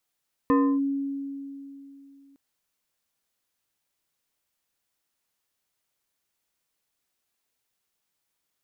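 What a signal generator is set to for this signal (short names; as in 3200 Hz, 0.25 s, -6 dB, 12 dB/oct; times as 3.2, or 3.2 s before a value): FM tone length 1.86 s, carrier 277 Hz, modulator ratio 2.73, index 0.98, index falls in 0.30 s linear, decay 2.99 s, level -16 dB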